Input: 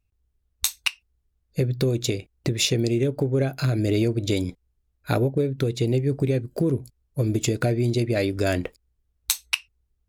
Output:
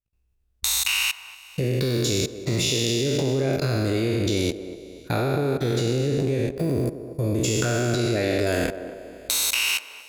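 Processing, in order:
peak hold with a decay on every bin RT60 2.11 s
output level in coarse steps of 23 dB
feedback echo with a band-pass in the loop 237 ms, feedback 52%, band-pass 520 Hz, level −10 dB

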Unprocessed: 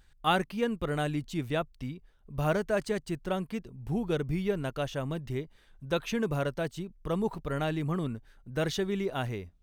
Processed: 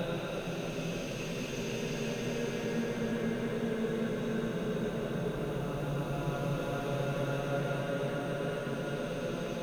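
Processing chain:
background noise white −68 dBFS
echo that builds up and dies away 148 ms, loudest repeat 5, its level −7.5 dB
extreme stretch with random phases 18×, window 0.25 s, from 0:06.00
level −6 dB

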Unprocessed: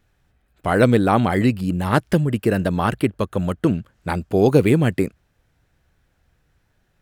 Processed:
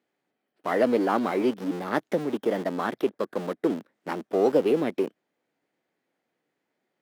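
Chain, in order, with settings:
in parallel at −7 dB: comparator with hysteresis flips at −25.5 dBFS
on the sum: formants moved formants +3 semitones
high-pass filter 260 Hz 24 dB per octave
spectral tilt −2 dB per octave
level −9 dB

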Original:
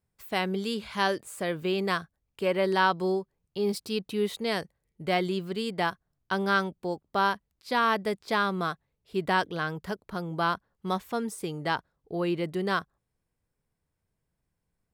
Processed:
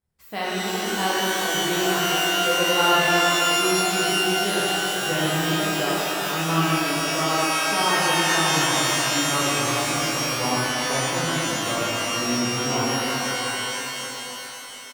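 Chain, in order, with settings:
pitch glide at a constant tempo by −7.5 semitones starting unshifted
echo with shifted repeats 378 ms, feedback 56%, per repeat +130 Hz, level −13 dB
reverb with rising layers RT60 3.5 s, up +12 semitones, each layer −2 dB, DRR −8.5 dB
level −4.5 dB

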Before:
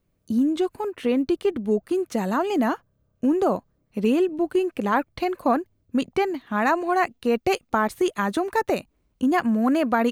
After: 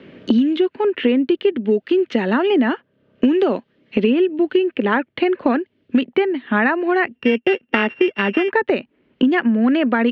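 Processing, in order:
0:07.15–0:08.50: samples sorted by size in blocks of 16 samples
loudspeaker in its box 240–3,200 Hz, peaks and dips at 240 Hz +6 dB, 390 Hz +4 dB, 720 Hz −6 dB, 1,100 Hz −7 dB, 1,800 Hz +5 dB, 3,000 Hz +6 dB
multiband upward and downward compressor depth 100%
level +3.5 dB

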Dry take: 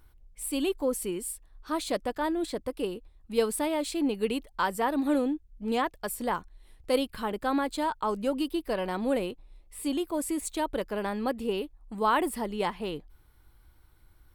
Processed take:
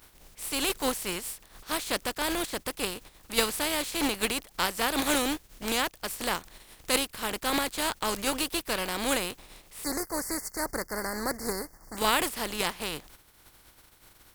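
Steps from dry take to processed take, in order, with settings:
compressing power law on the bin magnitudes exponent 0.41
0:09.84–0:11.97: Chebyshev band-stop filter 2,100–4,500 Hz, order 5
highs frequency-modulated by the lows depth 0.13 ms

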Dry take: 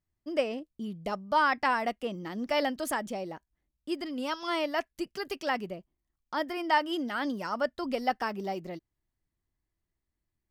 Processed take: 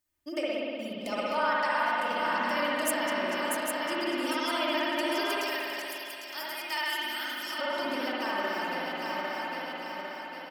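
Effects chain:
feedback delay that plays each chunk backwards 401 ms, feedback 68%, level −6 dB
0:05.37–0:07.59: first-order pre-emphasis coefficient 0.9
downward compressor, threshold −34 dBFS, peak gain reduction 13 dB
spectral tilt +3 dB per octave
comb filter 3.3 ms, depth 54%
spring reverb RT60 2.5 s, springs 58 ms, chirp 60 ms, DRR −6.5 dB

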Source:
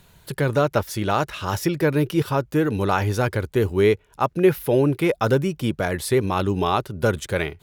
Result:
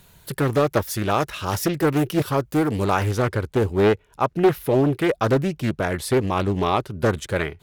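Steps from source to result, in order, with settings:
high-shelf EQ 8,300 Hz +8 dB, from 0:03.11 −2 dB
highs frequency-modulated by the lows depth 0.47 ms

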